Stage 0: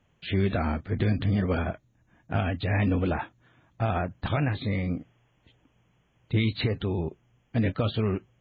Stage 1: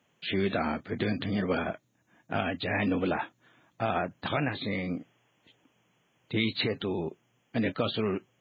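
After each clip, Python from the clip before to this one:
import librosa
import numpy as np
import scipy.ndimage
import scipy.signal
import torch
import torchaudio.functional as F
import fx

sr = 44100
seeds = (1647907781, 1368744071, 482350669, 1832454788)

y = scipy.signal.sosfilt(scipy.signal.butter(2, 200.0, 'highpass', fs=sr, output='sos'), x)
y = fx.high_shelf(y, sr, hz=3800.0, db=6.5)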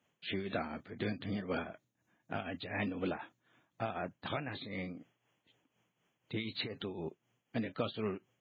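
y = fx.tremolo_shape(x, sr, shape='triangle', hz=4.0, depth_pct=70)
y = y * 10.0 ** (-5.5 / 20.0)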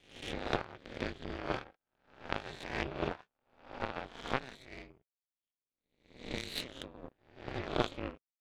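y = fx.spec_swells(x, sr, rise_s=1.11)
y = y * np.sin(2.0 * np.pi * 130.0 * np.arange(len(y)) / sr)
y = fx.power_curve(y, sr, exponent=2.0)
y = y * 10.0 ** (9.0 / 20.0)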